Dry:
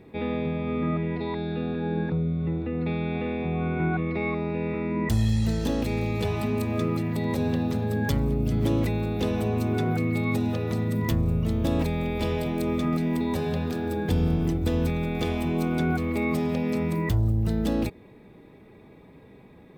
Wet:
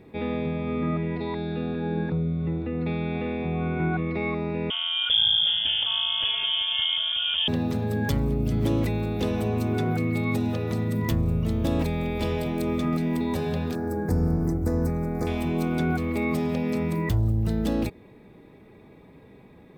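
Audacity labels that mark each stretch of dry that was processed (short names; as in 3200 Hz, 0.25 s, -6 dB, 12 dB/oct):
4.700000	7.480000	inverted band carrier 3400 Hz
13.750000	15.270000	Butterworth band-stop 3100 Hz, Q 0.83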